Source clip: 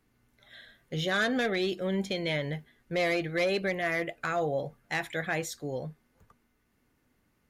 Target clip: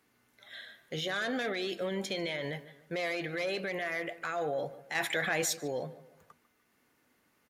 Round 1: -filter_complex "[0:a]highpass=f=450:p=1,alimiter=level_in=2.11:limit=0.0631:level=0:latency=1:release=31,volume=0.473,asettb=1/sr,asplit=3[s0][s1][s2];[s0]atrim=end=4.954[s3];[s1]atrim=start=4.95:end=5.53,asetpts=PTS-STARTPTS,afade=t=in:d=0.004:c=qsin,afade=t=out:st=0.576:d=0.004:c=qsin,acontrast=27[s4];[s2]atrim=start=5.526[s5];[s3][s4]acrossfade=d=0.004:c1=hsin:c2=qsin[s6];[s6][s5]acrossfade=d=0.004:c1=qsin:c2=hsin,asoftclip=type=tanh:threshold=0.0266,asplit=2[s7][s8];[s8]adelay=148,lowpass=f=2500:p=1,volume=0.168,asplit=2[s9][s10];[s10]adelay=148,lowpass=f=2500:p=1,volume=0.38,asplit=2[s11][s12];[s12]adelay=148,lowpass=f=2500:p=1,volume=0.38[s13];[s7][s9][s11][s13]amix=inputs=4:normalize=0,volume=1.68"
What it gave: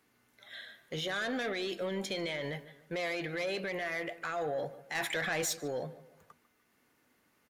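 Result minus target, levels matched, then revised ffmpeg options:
saturation: distortion +15 dB
-filter_complex "[0:a]highpass=f=450:p=1,alimiter=level_in=2.11:limit=0.0631:level=0:latency=1:release=31,volume=0.473,asettb=1/sr,asplit=3[s0][s1][s2];[s0]atrim=end=4.954[s3];[s1]atrim=start=4.95:end=5.53,asetpts=PTS-STARTPTS,afade=t=in:d=0.004:c=qsin,afade=t=out:st=0.576:d=0.004:c=qsin,acontrast=27[s4];[s2]atrim=start=5.526[s5];[s3][s4]acrossfade=d=0.004:c1=hsin:c2=qsin[s6];[s6][s5]acrossfade=d=0.004:c1=qsin:c2=hsin,asoftclip=type=tanh:threshold=0.0794,asplit=2[s7][s8];[s8]adelay=148,lowpass=f=2500:p=1,volume=0.168,asplit=2[s9][s10];[s10]adelay=148,lowpass=f=2500:p=1,volume=0.38,asplit=2[s11][s12];[s12]adelay=148,lowpass=f=2500:p=1,volume=0.38[s13];[s7][s9][s11][s13]amix=inputs=4:normalize=0,volume=1.68"

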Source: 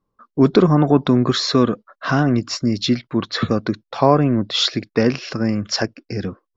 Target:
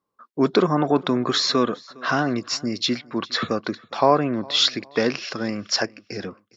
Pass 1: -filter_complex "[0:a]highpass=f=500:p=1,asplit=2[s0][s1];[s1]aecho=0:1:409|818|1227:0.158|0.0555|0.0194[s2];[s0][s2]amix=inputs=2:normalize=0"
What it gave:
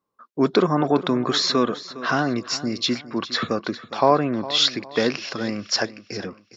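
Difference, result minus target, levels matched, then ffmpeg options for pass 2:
echo-to-direct +8 dB
-filter_complex "[0:a]highpass=f=500:p=1,asplit=2[s0][s1];[s1]aecho=0:1:409|818:0.0631|0.0221[s2];[s0][s2]amix=inputs=2:normalize=0"

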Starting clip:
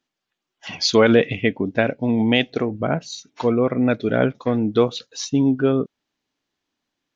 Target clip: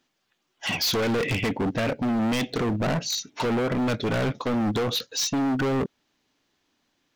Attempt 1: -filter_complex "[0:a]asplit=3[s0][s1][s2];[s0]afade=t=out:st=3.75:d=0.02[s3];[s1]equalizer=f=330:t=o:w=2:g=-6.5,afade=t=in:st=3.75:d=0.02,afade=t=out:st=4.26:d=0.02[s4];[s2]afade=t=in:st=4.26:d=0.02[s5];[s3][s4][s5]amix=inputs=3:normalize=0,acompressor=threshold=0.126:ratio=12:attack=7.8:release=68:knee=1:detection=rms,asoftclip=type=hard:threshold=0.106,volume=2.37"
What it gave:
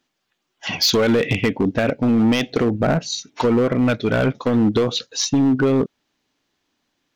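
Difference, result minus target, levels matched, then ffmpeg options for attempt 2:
hard clipper: distortion -7 dB
-filter_complex "[0:a]asplit=3[s0][s1][s2];[s0]afade=t=out:st=3.75:d=0.02[s3];[s1]equalizer=f=330:t=o:w=2:g=-6.5,afade=t=in:st=3.75:d=0.02,afade=t=out:st=4.26:d=0.02[s4];[s2]afade=t=in:st=4.26:d=0.02[s5];[s3][s4][s5]amix=inputs=3:normalize=0,acompressor=threshold=0.126:ratio=12:attack=7.8:release=68:knee=1:detection=rms,asoftclip=type=hard:threshold=0.0316,volume=2.37"

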